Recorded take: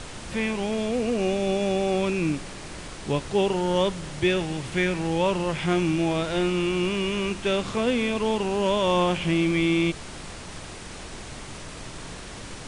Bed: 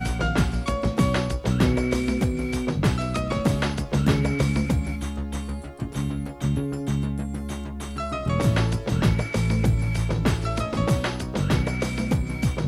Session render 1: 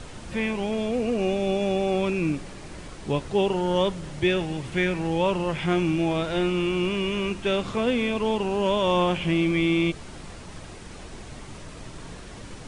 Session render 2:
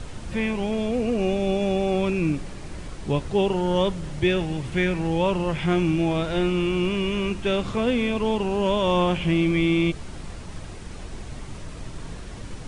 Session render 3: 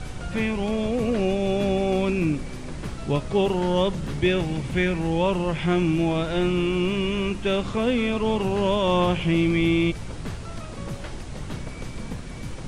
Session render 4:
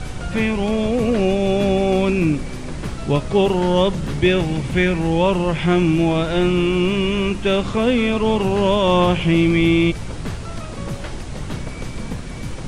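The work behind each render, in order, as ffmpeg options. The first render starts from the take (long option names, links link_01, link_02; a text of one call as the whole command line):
ffmpeg -i in.wav -af "afftdn=noise_reduction=6:noise_floor=-39" out.wav
ffmpeg -i in.wav -af "lowshelf=frequency=140:gain=7.5" out.wav
ffmpeg -i in.wav -i bed.wav -filter_complex "[1:a]volume=-13dB[link_01];[0:a][link_01]amix=inputs=2:normalize=0" out.wav
ffmpeg -i in.wav -af "volume=5.5dB" out.wav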